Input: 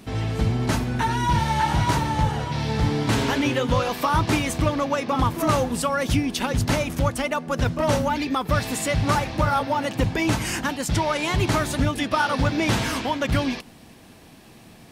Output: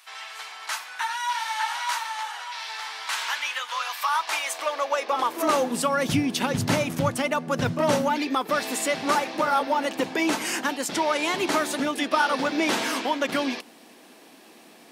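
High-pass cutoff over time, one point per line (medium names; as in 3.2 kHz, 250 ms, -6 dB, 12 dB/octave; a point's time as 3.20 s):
high-pass 24 dB/octave
3.97 s 1 kHz
5.34 s 360 Hz
6.15 s 120 Hz
7.75 s 120 Hz
8.25 s 260 Hz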